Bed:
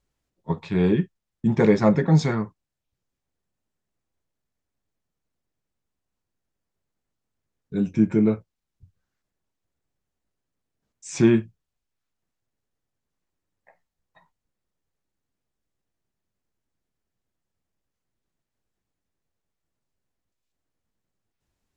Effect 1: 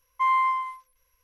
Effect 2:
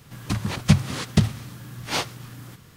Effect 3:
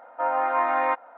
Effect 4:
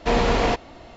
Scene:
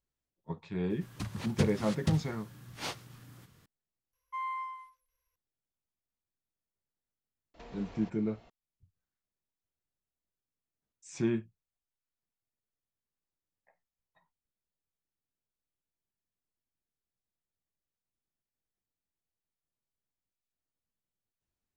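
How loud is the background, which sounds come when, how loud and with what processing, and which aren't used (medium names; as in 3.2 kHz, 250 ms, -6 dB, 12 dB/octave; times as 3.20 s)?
bed -13 dB
0.90 s: add 2 -12.5 dB
4.13 s: replace with 1 -14.5 dB
7.54 s: add 4 -15.5 dB + compression 8:1, threshold -31 dBFS
not used: 3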